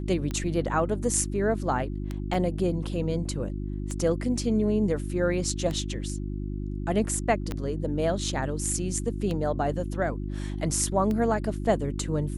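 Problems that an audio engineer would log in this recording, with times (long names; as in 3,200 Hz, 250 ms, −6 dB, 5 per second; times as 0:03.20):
mains hum 50 Hz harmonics 7 −32 dBFS
scratch tick 33 1/3 rpm −19 dBFS
0:02.34: drop-out 3.2 ms
0:07.52: click −18 dBFS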